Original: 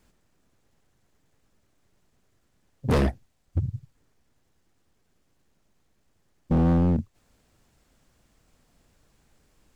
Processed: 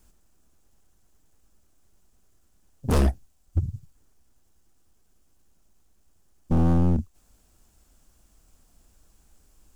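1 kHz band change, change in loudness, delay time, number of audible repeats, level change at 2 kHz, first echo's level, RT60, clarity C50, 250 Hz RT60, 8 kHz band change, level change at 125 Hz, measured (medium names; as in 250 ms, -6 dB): -0.5 dB, 0.0 dB, no echo, no echo, -3.0 dB, no echo, no reverb, no reverb, no reverb, no reading, +1.0 dB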